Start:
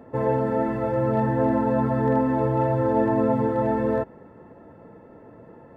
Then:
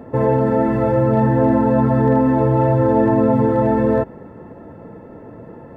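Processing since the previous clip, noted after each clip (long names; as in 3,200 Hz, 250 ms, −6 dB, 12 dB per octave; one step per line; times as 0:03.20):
low-shelf EQ 380 Hz +4.5 dB
in parallel at +1.5 dB: brickwall limiter −17 dBFS, peak gain reduction 9 dB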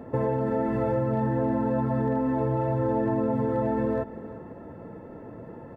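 downward compressor, threshold −18 dBFS, peak gain reduction 7.5 dB
single-tap delay 348 ms −16.5 dB
level −4.5 dB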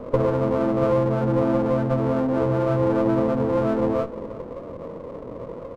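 low-pass with resonance 560 Hz, resonance Q 4.9
double-tracking delay 24 ms −6 dB
windowed peak hold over 17 samples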